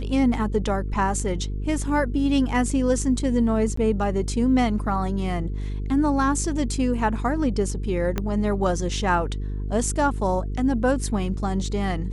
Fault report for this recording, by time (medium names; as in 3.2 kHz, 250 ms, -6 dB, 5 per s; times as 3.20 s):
buzz 50 Hz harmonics 9 -28 dBFS
3.76–3.77 s: dropout 14 ms
8.18 s: pop -11 dBFS